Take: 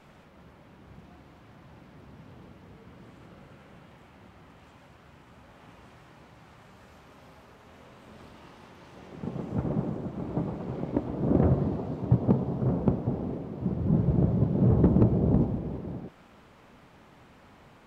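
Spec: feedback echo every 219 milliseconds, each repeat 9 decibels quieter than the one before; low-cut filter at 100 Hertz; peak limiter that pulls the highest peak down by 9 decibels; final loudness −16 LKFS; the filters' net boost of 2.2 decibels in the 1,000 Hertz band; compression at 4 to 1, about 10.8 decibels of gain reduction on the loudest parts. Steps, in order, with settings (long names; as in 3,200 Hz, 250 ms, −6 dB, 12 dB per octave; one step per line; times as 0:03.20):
high-pass filter 100 Hz
parametric band 1,000 Hz +3 dB
downward compressor 4 to 1, threshold −31 dBFS
brickwall limiter −26.5 dBFS
repeating echo 219 ms, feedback 35%, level −9 dB
level +21 dB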